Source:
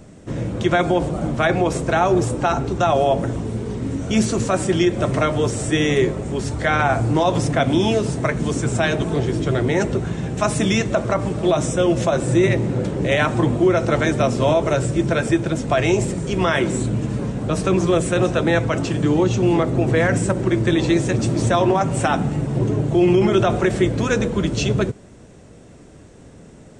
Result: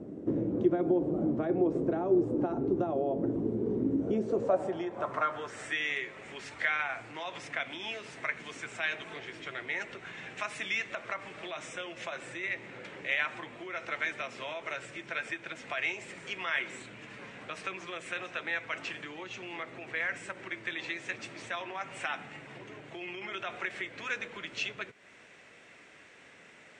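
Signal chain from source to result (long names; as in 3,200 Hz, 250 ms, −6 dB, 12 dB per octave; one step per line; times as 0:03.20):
downward compressor 4 to 1, threshold −29 dBFS, peak gain reduction 14.5 dB
band-pass filter sweep 330 Hz → 2,200 Hz, 0:03.98–0:05.78
level +7.5 dB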